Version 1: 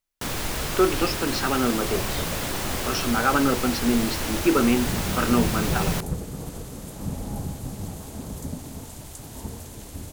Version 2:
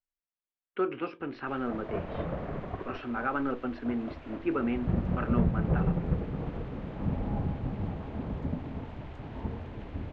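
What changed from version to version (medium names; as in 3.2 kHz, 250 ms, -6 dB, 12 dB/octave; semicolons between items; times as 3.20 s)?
speech -9.5 dB; first sound: muted; master: add low-pass 2.6 kHz 24 dB/octave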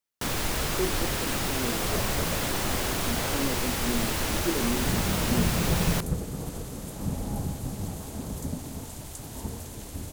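speech: add Butterworth band-pass 300 Hz, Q 0.57; first sound: unmuted; master: remove low-pass 2.6 kHz 24 dB/octave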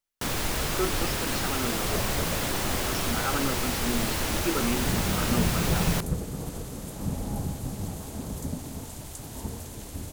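speech: remove Butterworth band-pass 300 Hz, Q 0.57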